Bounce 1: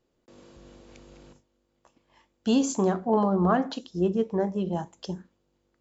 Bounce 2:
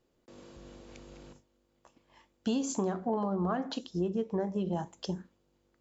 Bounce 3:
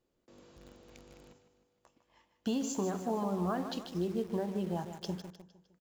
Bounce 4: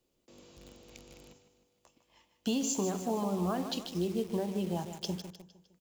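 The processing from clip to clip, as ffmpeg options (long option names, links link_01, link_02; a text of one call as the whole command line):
ffmpeg -i in.wav -af "acompressor=threshold=-28dB:ratio=5" out.wav
ffmpeg -i in.wav -filter_complex "[0:a]aecho=1:1:153|306|459|612|765:0.316|0.155|0.0759|0.0372|0.0182,asplit=2[link_01][link_02];[link_02]acrusher=bits=6:mix=0:aa=0.000001,volume=-7.5dB[link_03];[link_01][link_03]amix=inputs=2:normalize=0,volume=-5.5dB" out.wav
ffmpeg -i in.wav -filter_complex "[0:a]highshelf=frequency=2300:gain=-10.5,acrossover=split=120|900[link_01][link_02][link_03];[link_03]aexciter=amount=3.2:drive=7.1:freq=2300[link_04];[link_01][link_02][link_04]amix=inputs=3:normalize=0,volume=1.5dB" out.wav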